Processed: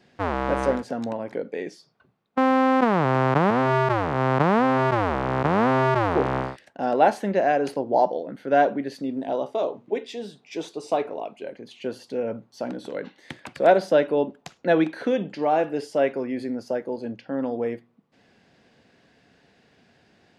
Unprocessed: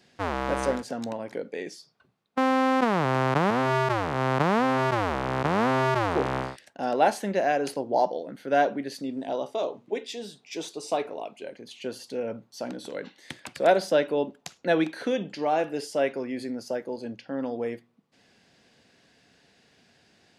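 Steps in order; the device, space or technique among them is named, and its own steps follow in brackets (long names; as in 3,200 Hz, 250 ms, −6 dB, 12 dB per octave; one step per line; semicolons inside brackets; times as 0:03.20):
through cloth (high-shelf EQ 3,500 Hz −12 dB)
level +4 dB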